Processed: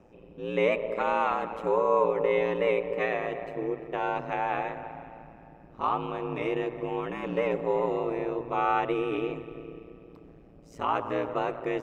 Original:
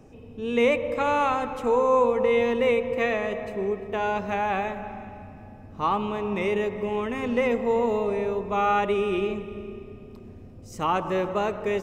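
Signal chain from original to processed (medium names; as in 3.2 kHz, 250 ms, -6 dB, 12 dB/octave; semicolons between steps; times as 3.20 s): tone controls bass -7 dB, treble -11 dB; ring modulator 57 Hz; 5.81–7.75 s: band-stop 2 kHz, Q 13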